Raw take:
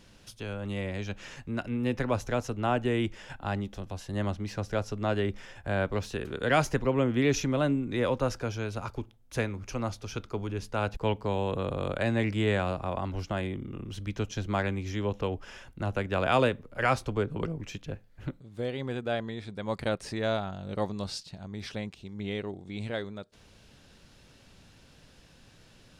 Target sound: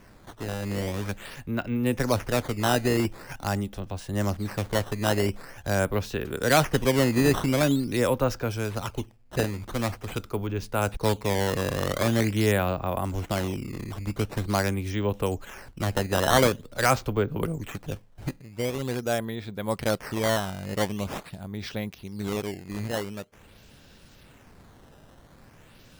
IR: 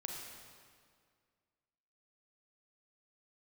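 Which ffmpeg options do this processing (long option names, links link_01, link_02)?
-af "acrusher=samples=11:mix=1:aa=0.000001:lfo=1:lforange=17.6:lforate=0.45,volume=4dB"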